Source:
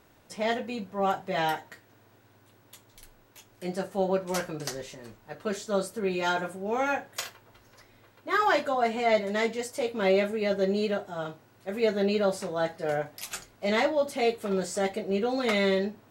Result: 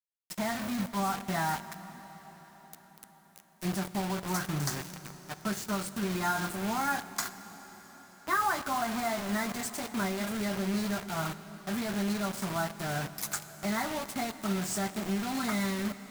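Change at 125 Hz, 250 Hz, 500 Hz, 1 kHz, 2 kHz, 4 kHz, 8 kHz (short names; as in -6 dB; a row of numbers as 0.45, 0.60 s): +2.5, 0.0, -11.5, -2.5, -3.0, -3.0, +4.0 dB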